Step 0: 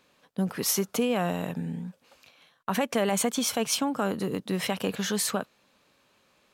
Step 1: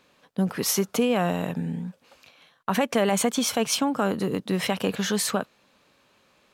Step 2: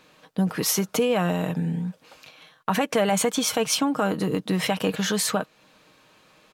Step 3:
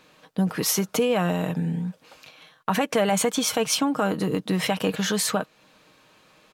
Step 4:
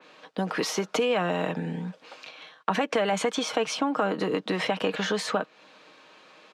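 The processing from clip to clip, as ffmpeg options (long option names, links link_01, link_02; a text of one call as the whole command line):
ffmpeg -i in.wav -af "highshelf=frequency=6900:gain=-4,volume=3.5dB" out.wav
ffmpeg -i in.wav -filter_complex "[0:a]aecho=1:1:6.4:0.4,asplit=2[link_01][link_02];[link_02]acompressor=threshold=-33dB:ratio=6,volume=2dB[link_03];[link_01][link_03]amix=inputs=2:normalize=0,volume=-2dB" out.wav
ffmpeg -i in.wav -af anull out.wav
ffmpeg -i in.wav -filter_complex "[0:a]highpass=290,lowpass=5100,acrossover=split=420|930[link_01][link_02][link_03];[link_01]acompressor=threshold=-33dB:ratio=4[link_04];[link_02]acompressor=threshold=-34dB:ratio=4[link_05];[link_03]acompressor=threshold=-33dB:ratio=4[link_06];[link_04][link_05][link_06]amix=inputs=3:normalize=0,adynamicequalizer=threshold=0.00501:dfrequency=3100:dqfactor=0.7:tfrequency=3100:tqfactor=0.7:attack=5:release=100:ratio=0.375:range=2:mode=cutabove:tftype=highshelf,volume=4.5dB" out.wav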